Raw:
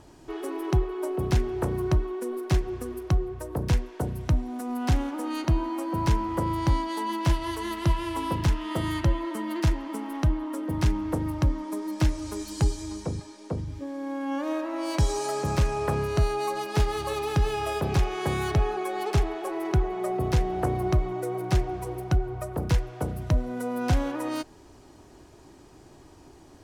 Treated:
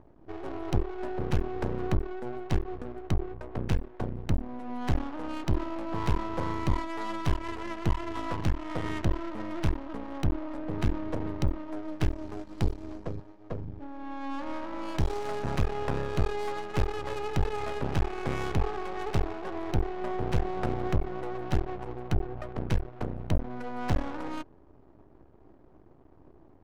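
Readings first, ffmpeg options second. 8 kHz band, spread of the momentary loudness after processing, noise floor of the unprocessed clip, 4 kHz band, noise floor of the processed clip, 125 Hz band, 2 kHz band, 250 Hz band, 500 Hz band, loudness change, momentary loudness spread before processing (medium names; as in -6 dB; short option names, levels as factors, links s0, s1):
-11.5 dB, 8 LU, -51 dBFS, -6.5 dB, -55 dBFS, -5.0 dB, -3.5 dB, -4.5 dB, -4.5 dB, -5.0 dB, 7 LU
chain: -af "aeval=exprs='max(val(0),0)':c=same,adynamicsmooth=sensitivity=7:basefreq=910"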